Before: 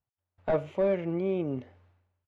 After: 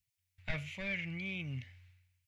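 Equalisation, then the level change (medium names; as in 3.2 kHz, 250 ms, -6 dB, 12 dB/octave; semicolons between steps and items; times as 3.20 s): FFT filter 120 Hz 0 dB, 390 Hz -28 dB, 1.2 kHz -16 dB, 2.2 kHz +9 dB, 3.2 kHz +5 dB, 5.1 kHz +7 dB; +2.0 dB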